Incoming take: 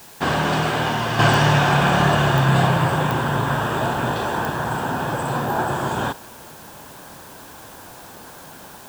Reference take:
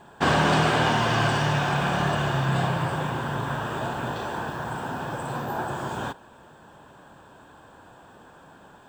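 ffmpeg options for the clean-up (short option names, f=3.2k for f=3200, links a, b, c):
-af "adeclick=t=4,afwtdn=0.0056,asetnsamples=n=441:p=0,asendcmd='1.19 volume volume -7.5dB',volume=0dB"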